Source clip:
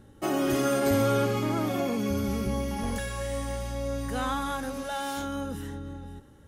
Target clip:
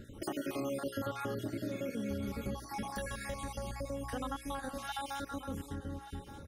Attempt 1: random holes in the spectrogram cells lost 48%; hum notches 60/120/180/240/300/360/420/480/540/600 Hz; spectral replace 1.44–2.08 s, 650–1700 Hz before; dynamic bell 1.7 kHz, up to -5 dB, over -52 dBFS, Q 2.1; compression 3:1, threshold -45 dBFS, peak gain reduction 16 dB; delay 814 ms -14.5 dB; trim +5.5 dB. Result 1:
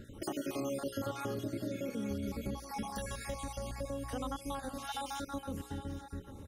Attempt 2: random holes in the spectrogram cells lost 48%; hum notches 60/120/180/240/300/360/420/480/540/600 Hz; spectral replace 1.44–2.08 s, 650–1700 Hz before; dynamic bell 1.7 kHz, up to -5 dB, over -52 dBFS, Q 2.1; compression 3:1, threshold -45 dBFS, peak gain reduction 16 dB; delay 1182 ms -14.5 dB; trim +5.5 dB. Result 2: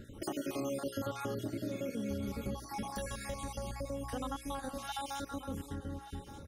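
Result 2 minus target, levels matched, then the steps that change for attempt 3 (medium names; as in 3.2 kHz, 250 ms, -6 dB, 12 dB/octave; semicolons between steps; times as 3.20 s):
2 kHz band -3.0 dB
change: dynamic bell 6.5 kHz, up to -5 dB, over -52 dBFS, Q 2.1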